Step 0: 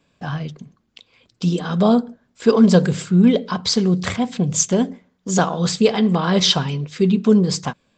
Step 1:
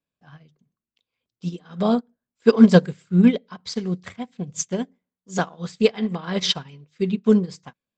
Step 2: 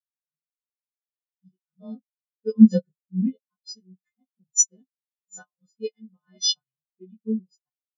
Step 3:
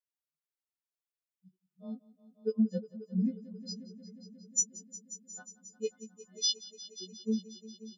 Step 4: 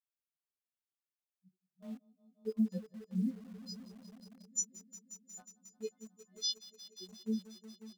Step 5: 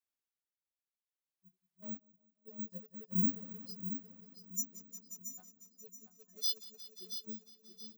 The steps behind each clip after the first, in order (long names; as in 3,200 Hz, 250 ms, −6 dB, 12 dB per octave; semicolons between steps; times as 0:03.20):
dynamic equaliser 2,000 Hz, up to +5 dB, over −41 dBFS, Q 1.7; expander for the loud parts 2.5 to 1, over −27 dBFS; level +2.5 dB
every partial snapped to a pitch grid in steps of 3 semitones; dynamic equaliser 6,300 Hz, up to +7 dB, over −37 dBFS, Q 1.2; every bin expanded away from the loudest bin 2.5 to 1; level −3 dB
downward compressor 6 to 1, threshold −21 dBFS, peak gain reduction 15 dB; echo machine with several playback heads 179 ms, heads all three, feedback 64%, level −20 dB; level −4 dB
notch comb filter 490 Hz; in parallel at −8.5 dB: bit reduction 8 bits; on the sum: level −6.5 dB
amplitude tremolo 0.6 Hz, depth 89%; on a send: repeating echo 677 ms, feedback 35%, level −9 dB; on the sum: bad sample-rate conversion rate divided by 2×, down filtered, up zero stuff